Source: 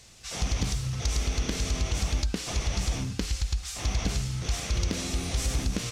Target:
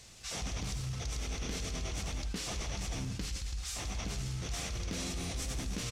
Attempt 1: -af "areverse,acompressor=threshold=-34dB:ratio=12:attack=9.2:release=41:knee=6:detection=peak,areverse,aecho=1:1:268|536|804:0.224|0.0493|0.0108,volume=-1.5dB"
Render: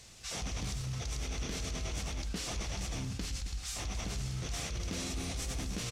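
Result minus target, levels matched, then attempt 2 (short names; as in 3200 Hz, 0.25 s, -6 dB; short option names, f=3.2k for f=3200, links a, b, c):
echo 0.101 s late
-af "areverse,acompressor=threshold=-34dB:ratio=12:attack=9.2:release=41:knee=6:detection=peak,areverse,aecho=1:1:167|334|501:0.224|0.0493|0.0108,volume=-1.5dB"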